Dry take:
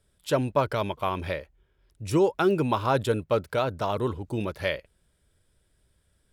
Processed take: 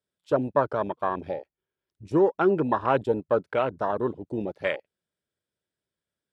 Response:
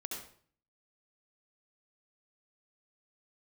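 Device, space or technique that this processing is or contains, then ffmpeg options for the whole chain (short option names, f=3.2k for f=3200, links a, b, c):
over-cleaned archive recording: -af "highpass=180,lowpass=7k,afwtdn=0.0316,volume=1.5dB"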